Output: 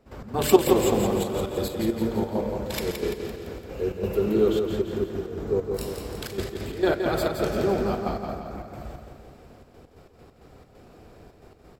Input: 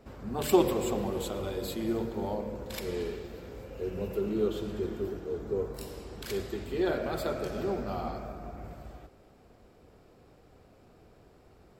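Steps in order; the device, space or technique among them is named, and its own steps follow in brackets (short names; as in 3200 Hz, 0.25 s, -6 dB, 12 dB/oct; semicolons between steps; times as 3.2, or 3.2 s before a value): trance gate with a delay (step gate ".x.xx.xxxxx.x.x" 134 bpm -12 dB; feedback echo 0.17 s, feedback 52%, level -6 dB); gain +7.5 dB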